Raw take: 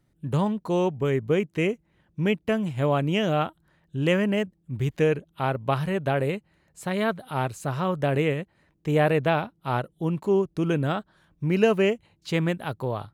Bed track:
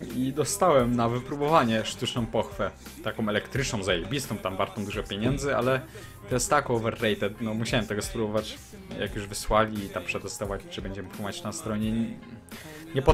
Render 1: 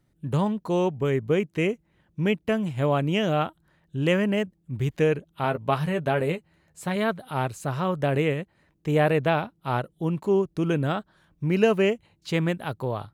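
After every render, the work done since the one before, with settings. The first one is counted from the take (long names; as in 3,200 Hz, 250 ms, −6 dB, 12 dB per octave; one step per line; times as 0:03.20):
0:05.43–0:06.96: double-tracking delay 12 ms −7.5 dB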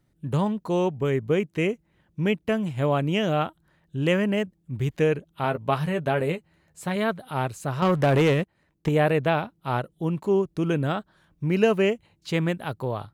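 0:07.82–0:08.89: leveller curve on the samples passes 2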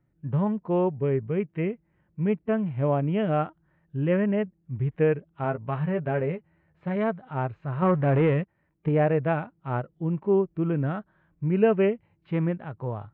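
low-pass filter 2,300 Hz 24 dB per octave
harmonic and percussive parts rebalanced percussive −10 dB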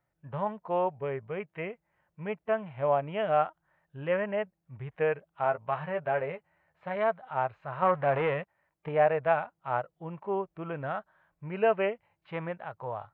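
low shelf with overshoot 450 Hz −12.5 dB, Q 1.5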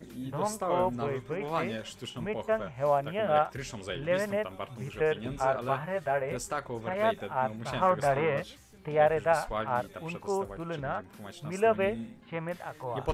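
mix in bed track −11 dB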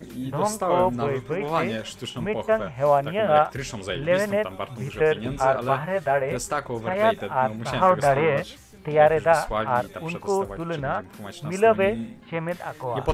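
level +7 dB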